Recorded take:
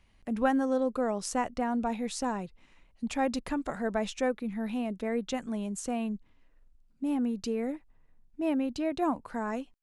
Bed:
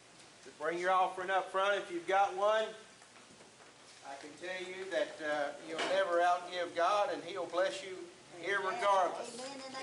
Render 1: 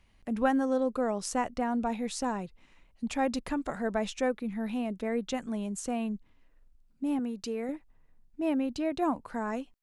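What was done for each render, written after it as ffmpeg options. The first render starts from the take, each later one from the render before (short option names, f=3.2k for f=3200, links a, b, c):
-filter_complex "[0:a]asettb=1/sr,asplit=3[a][b][c];[a]atrim=end=7.194[d];[b]atrim=start=7.19:end=7.69,asetpts=PTS-STARTPTS,afade=t=in:d=0.004:c=qsin,afade=t=out:st=0.496:d=0.004:c=qsin,lowshelf=f=250:g=-8[e];[c]atrim=start=7.686[f];[d][e]acrossfade=d=0.004:c1=hsin:c2=qsin[g];[g][f]acrossfade=d=0.004:c1=qsin:c2=hsin"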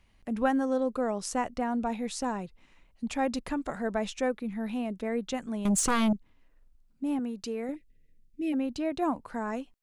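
-filter_complex "[0:a]asettb=1/sr,asplit=3[a][b][c];[a]atrim=end=5.654[d];[b]atrim=start=5.65:end=6.13,asetpts=PTS-STARTPTS,afade=t=in:d=0.004:c=qsin,afade=t=out:st=0.476:d=0.004:c=qsin,aeval=exprs='0.0891*sin(PI/2*3.16*val(0)/0.0891)':c=same[e];[c]atrim=start=6.126[f];[d][e]acrossfade=d=0.004:c1=hsin:c2=qsin[g];[g][f]acrossfade=d=0.004:c1=qsin:c2=hsin,asplit=3[h][i][j];[h]afade=t=out:st=7.74:d=0.02[k];[i]asuperstop=centerf=1000:order=8:qfactor=0.72,afade=t=in:st=7.74:d=0.02,afade=t=out:st=8.52:d=0.02[l];[j]afade=t=in:st=8.52:d=0.02[m];[k][l][m]amix=inputs=3:normalize=0"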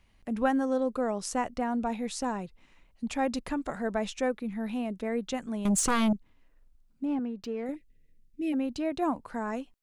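-filter_complex "[0:a]asettb=1/sr,asplit=3[a][b][c];[a]atrim=end=7.054[d];[b]atrim=start=7.05:end=7.66,asetpts=PTS-STARTPTS,afade=t=in:d=0.004:c=qsin,afade=t=out:st=0.606:d=0.004:c=qsin,adynamicsmooth=sensitivity=6.5:basefreq=2.4k[e];[c]atrim=start=7.656[f];[d][e]acrossfade=d=0.004:c1=hsin:c2=qsin[g];[g][f]acrossfade=d=0.004:c1=qsin:c2=hsin"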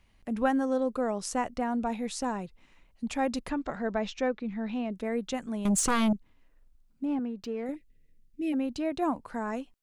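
-filter_complex "[0:a]asettb=1/sr,asplit=3[a][b][c];[a]atrim=end=3.504[d];[b]atrim=start=3.5:end=4.92,asetpts=PTS-STARTPTS,afade=t=in:d=0.004:c=qsin,afade=t=out:st=1.416:d=0.004:c=qsin,lowpass=f=5.8k:w=0.5412,lowpass=f=5.8k:w=1.3066[e];[c]atrim=start=4.916[f];[d][e]acrossfade=d=0.004:c1=hsin:c2=qsin[g];[g][f]acrossfade=d=0.004:c1=qsin:c2=hsin"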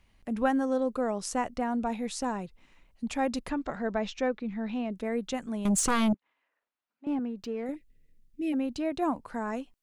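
-filter_complex "[0:a]asettb=1/sr,asplit=3[a][b][c];[a]atrim=end=6.144[d];[b]atrim=start=6.14:end=7.07,asetpts=PTS-STARTPTS,afade=t=in:d=0.004:c=qsin,afade=t=out:st=0.926:d=0.004:c=qsin,highpass=780,lowpass=2.8k[e];[c]atrim=start=7.066[f];[d][e]acrossfade=d=0.004:c1=hsin:c2=qsin[g];[g][f]acrossfade=d=0.004:c1=qsin:c2=hsin"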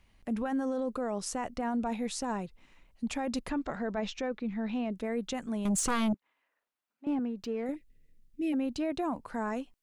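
-af "alimiter=level_in=0.5dB:limit=-24dB:level=0:latency=1:release=13,volume=-0.5dB"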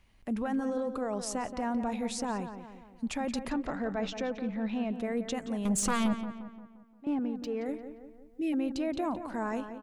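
-filter_complex "[0:a]asplit=2[a][b];[b]adelay=175,lowpass=f=2.5k:p=1,volume=-9.5dB,asplit=2[c][d];[d]adelay=175,lowpass=f=2.5k:p=1,volume=0.51,asplit=2[e][f];[f]adelay=175,lowpass=f=2.5k:p=1,volume=0.51,asplit=2[g][h];[h]adelay=175,lowpass=f=2.5k:p=1,volume=0.51,asplit=2[i][j];[j]adelay=175,lowpass=f=2.5k:p=1,volume=0.51,asplit=2[k][l];[l]adelay=175,lowpass=f=2.5k:p=1,volume=0.51[m];[a][c][e][g][i][k][m]amix=inputs=7:normalize=0"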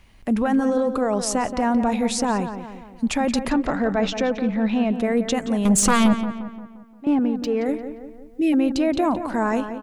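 -af "volume=11.5dB"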